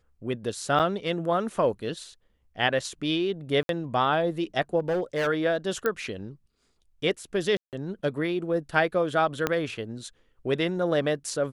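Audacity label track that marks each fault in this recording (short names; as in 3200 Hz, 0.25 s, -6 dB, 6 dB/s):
0.790000	0.800000	gap 7.6 ms
3.630000	3.690000	gap 62 ms
4.790000	5.280000	clipped -22.5 dBFS
5.860000	5.860000	pop -13 dBFS
7.570000	7.730000	gap 0.158 s
9.470000	9.470000	pop -10 dBFS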